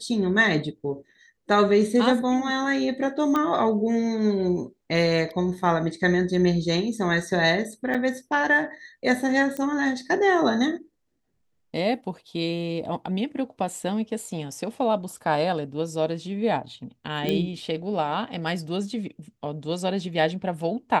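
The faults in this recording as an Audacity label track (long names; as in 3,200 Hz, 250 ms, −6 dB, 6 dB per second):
3.360000	3.360000	click −13 dBFS
7.940000	7.950000	drop-out 6 ms
9.570000	9.570000	click −18 dBFS
17.290000	17.290000	click −13 dBFS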